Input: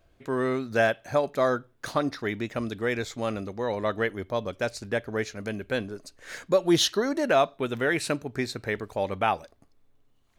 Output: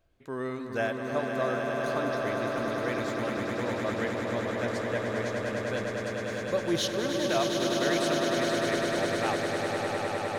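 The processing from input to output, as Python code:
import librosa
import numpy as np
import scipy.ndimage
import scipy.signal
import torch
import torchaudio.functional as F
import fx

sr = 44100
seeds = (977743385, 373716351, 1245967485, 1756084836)

y = fx.echo_swell(x, sr, ms=102, loudest=8, wet_db=-6.5)
y = y * 10.0 ** (-7.5 / 20.0)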